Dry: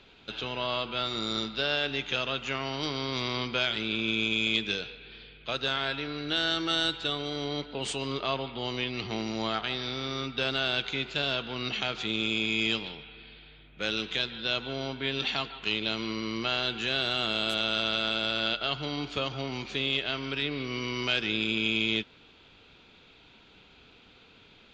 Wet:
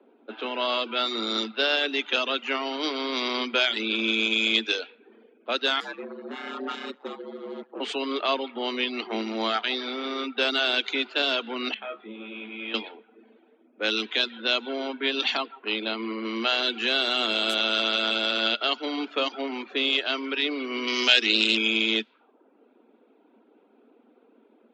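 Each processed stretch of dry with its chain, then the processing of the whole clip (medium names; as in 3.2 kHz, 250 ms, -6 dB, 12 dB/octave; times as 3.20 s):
5.80–7.80 s: comb filter that takes the minimum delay 2.4 ms + treble shelf 3.1 kHz -7 dB + ring modulator 66 Hz
11.74–12.74 s: steep low-pass 3.8 kHz + feedback comb 70 Hz, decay 0.34 s, mix 90%
15.37–16.25 s: Chebyshev low-pass 5.1 kHz, order 10 + companded quantiser 8-bit + peaking EQ 3.7 kHz -3.5 dB 1.5 oct
20.87–21.57 s: treble shelf 3.4 kHz +11 dB + loudspeaker Doppler distortion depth 0.1 ms
whole clip: steep high-pass 220 Hz 96 dB/octave; level-controlled noise filter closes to 560 Hz, open at -25 dBFS; reverb removal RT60 0.58 s; trim +6 dB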